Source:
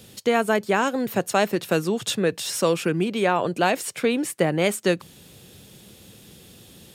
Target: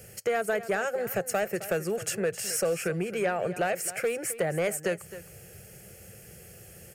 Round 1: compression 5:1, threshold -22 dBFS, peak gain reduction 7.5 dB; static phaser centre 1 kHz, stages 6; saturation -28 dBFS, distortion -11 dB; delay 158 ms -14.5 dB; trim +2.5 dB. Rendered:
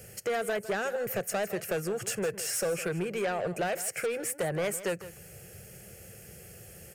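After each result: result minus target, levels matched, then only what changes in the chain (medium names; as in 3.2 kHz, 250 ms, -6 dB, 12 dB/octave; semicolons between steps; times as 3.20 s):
echo 106 ms early; saturation: distortion +7 dB
change: delay 264 ms -14.5 dB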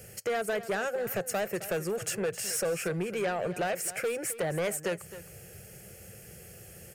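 saturation: distortion +7 dB
change: saturation -21.5 dBFS, distortion -18 dB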